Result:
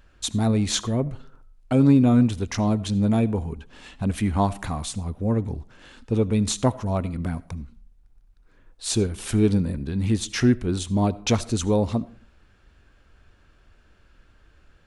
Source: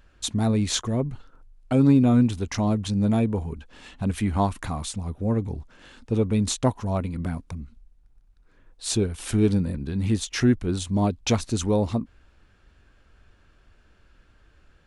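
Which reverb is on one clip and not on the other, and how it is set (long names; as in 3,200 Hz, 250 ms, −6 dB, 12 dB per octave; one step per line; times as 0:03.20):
comb and all-pass reverb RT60 0.49 s, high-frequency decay 0.55×, pre-delay 35 ms, DRR 19 dB
level +1 dB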